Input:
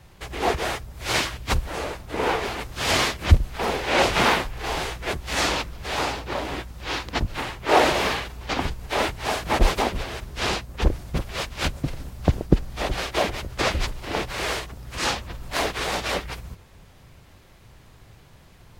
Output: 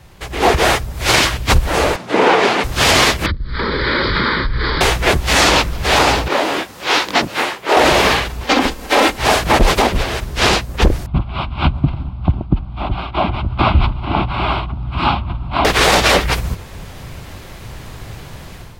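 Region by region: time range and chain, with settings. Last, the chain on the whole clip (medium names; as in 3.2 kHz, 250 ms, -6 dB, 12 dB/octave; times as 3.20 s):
1.96–2.64 s: high-pass 160 Hz 24 dB/octave + distance through air 62 m
3.26–4.81 s: steep low-pass 4.9 kHz 96 dB/octave + static phaser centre 2.7 kHz, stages 6 + compression 12:1, threshold -30 dBFS
6.28–7.77 s: high-pass 270 Hz + detune thickener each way 41 cents
8.44–9.19 s: resonant low shelf 180 Hz -12 dB, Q 1.5 + comb 3.8 ms, depth 35%
11.06–15.65 s: high-pass 51 Hz + tape spacing loss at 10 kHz 38 dB + static phaser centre 1.8 kHz, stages 6
whole clip: level rider gain up to 11.5 dB; loudness maximiser +7.5 dB; trim -1 dB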